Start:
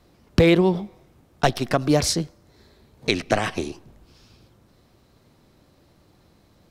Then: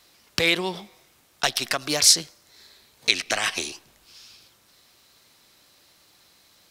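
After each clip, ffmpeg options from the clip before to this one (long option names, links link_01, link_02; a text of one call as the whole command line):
ffmpeg -i in.wav -filter_complex "[0:a]lowshelf=frequency=270:gain=-8.5,asplit=2[link_01][link_02];[link_02]alimiter=limit=-15dB:level=0:latency=1:release=212,volume=2.5dB[link_03];[link_01][link_03]amix=inputs=2:normalize=0,tiltshelf=frequency=1300:gain=-9.5,volume=-5dB" out.wav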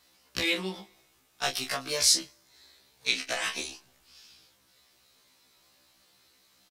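ffmpeg -i in.wav -filter_complex "[0:a]asplit=2[link_01][link_02];[link_02]adelay=27,volume=-7.5dB[link_03];[link_01][link_03]amix=inputs=2:normalize=0,afftfilt=real='re*1.73*eq(mod(b,3),0)':imag='im*1.73*eq(mod(b,3),0)':win_size=2048:overlap=0.75,volume=-4.5dB" out.wav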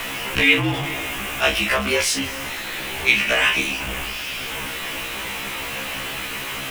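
ffmpeg -i in.wav -af "aeval=exprs='val(0)+0.5*0.0398*sgn(val(0))':channel_layout=same,highshelf=frequency=3500:width_type=q:width=3:gain=-7,afreqshift=-56,volume=7.5dB" out.wav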